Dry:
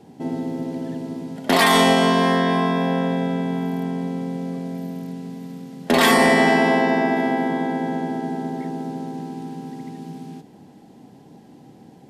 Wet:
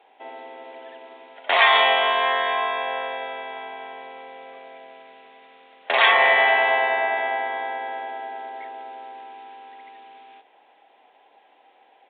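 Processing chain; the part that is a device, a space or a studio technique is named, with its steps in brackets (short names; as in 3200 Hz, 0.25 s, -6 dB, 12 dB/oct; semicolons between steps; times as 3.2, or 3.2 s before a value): musical greeting card (downsampling 8000 Hz; HPF 610 Hz 24 dB/oct; bell 2400 Hz +6 dB 0.53 oct)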